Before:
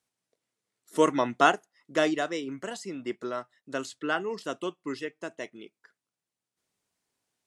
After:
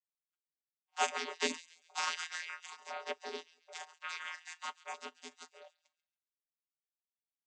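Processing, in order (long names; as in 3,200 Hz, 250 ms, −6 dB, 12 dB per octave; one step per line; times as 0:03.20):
noise gate −55 dBFS, range −12 dB
gate on every frequency bin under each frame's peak −30 dB weak
channel vocoder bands 16, square 83.9 Hz
auto-filter high-pass sine 0.52 Hz 350–1,600 Hz
delay with a high-pass on its return 138 ms, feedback 37%, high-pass 2,100 Hz, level −17 dB
phase shifter 0.33 Hz, delay 1.1 ms, feedback 21%
level +10 dB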